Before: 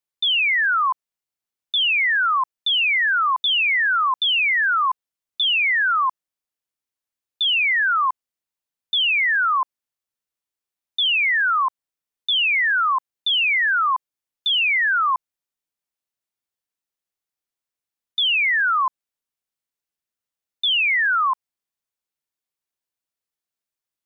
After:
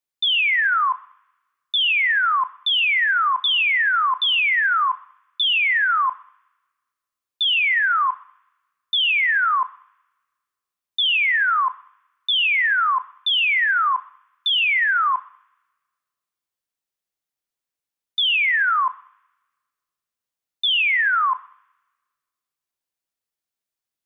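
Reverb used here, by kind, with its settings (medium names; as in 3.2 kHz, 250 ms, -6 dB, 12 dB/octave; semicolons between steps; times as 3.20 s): two-slope reverb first 0.53 s, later 1.5 s, from -24 dB, DRR 13 dB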